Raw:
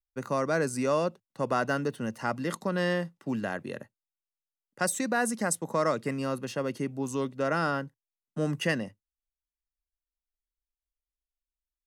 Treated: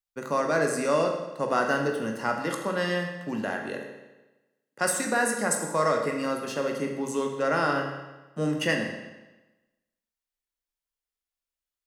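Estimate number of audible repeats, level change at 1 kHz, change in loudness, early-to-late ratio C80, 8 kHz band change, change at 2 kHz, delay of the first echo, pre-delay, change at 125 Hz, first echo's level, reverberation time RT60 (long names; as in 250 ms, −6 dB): no echo audible, +3.5 dB, +3.0 dB, 7.0 dB, +3.5 dB, +4.0 dB, no echo audible, 14 ms, −1.5 dB, no echo audible, 1.1 s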